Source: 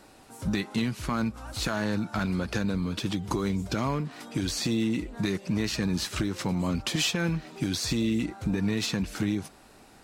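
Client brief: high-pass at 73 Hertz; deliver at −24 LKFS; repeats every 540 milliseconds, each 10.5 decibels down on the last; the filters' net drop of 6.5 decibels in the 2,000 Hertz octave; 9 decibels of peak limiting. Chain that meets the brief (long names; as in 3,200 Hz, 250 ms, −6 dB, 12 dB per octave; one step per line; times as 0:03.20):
high-pass filter 73 Hz
parametric band 2,000 Hz −9 dB
brickwall limiter −25.5 dBFS
repeating echo 540 ms, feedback 30%, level −10.5 dB
level +10.5 dB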